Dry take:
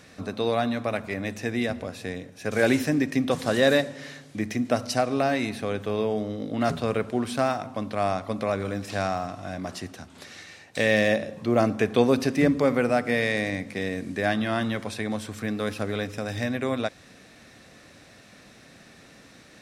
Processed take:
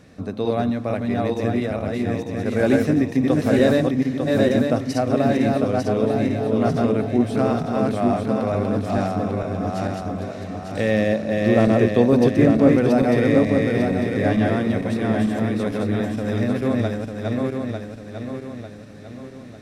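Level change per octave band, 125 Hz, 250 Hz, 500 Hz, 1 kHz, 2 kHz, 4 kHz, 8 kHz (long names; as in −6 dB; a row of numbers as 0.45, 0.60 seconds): +9.0 dB, +8.5 dB, +5.5 dB, +3.0 dB, −0.5 dB, −2.0 dB, can't be measured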